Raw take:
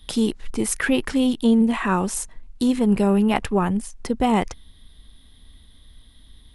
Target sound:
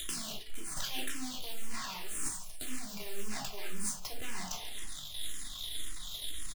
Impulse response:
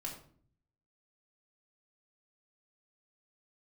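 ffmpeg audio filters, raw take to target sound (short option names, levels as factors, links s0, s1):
-filter_complex "[0:a]acrossover=split=620[s0][s1];[s0]acrusher=bits=5:mode=log:mix=0:aa=0.000001[s2];[s2][s1]amix=inputs=2:normalize=0,aecho=1:1:138|276|414:0.1|0.043|0.0185,acompressor=mode=upward:threshold=0.0398:ratio=2.5,tiltshelf=f=640:g=-6.5,aeval=exprs='max(val(0),0)':c=same,highshelf=f=2200:g=11.5,aeval=exprs='clip(val(0),-1,0.0531)':c=same[s3];[1:a]atrim=start_sample=2205,afade=t=out:st=0.16:d=0.01,atrim=end_sample=7497[s4];[s3][s4]afir=irnorm=-1:irlink=0,areverse,acompressor=threshold=0.0316:ratio=10,areverse,asplit=2[s5][s6];[s6]afreqshift=-1.9[s7];[s5][s7]amix=inputs=2:normalize=1,volume=1.26"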